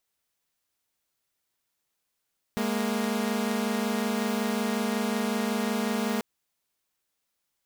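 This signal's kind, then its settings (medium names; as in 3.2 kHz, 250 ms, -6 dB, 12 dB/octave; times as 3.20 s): chord G#3/A#3 saw, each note -26 dBFS 3.64 s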